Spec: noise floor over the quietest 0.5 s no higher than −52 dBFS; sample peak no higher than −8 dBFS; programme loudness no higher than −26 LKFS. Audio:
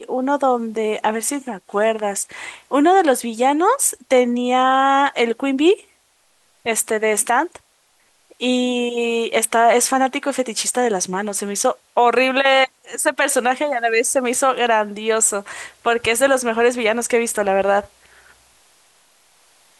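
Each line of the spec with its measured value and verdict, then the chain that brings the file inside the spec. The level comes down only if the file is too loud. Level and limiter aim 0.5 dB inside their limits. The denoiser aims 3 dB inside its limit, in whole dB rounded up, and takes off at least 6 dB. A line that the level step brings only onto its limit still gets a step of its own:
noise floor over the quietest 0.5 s −60 dBFS: in spec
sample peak −5.0 dBFS: out of spec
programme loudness −18.0 LKFS: out of spec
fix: level −8.5 dB

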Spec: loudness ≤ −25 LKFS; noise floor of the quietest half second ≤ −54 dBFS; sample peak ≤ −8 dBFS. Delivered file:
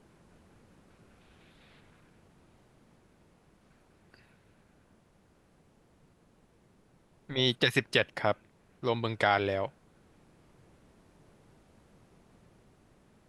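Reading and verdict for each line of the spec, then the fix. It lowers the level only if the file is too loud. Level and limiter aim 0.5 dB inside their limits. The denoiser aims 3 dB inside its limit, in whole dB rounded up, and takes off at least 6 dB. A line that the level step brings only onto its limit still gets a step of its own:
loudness −29.5 LKFS: in spec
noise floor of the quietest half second −65 dBFS: in spec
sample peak −10.0 dBFS: in spec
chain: no processing needed

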